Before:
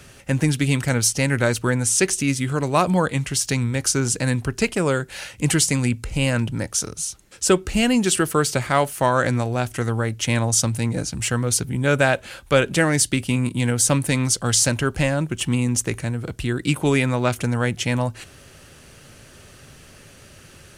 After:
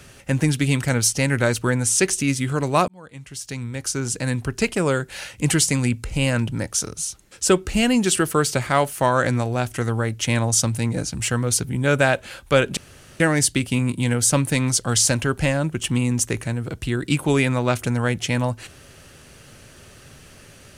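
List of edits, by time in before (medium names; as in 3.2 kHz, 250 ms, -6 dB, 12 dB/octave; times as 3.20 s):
2.88–4.72 s: fade in
12.77 s: insert room tone 0.43 s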